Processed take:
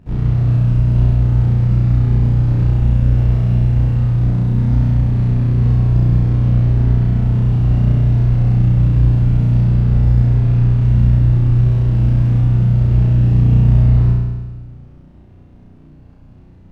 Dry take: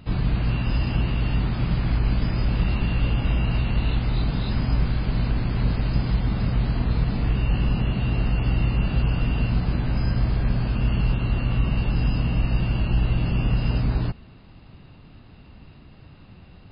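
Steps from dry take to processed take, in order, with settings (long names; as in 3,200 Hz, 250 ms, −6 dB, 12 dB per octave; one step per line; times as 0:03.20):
running median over 41 samples
high-shelf EQ 4,500 Hz −9 dB
flutter between parallel walls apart 5.7 metres, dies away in 1.4 s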